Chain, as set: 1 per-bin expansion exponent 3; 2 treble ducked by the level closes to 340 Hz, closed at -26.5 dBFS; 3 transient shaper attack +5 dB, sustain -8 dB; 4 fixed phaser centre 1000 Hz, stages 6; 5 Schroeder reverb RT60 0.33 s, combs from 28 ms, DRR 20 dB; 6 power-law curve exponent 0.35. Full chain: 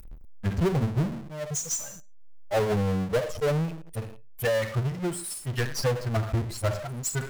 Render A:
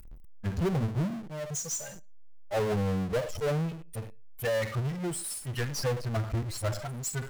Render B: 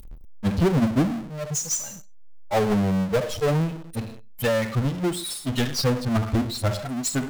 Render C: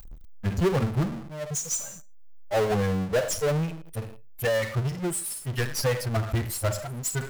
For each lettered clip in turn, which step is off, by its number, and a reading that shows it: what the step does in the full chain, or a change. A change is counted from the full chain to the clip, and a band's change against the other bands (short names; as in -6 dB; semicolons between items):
3, loudness change -3.5 LU; 4, 250 Hz band +5.0 dB; 2, 125 Hz band -1.5 dB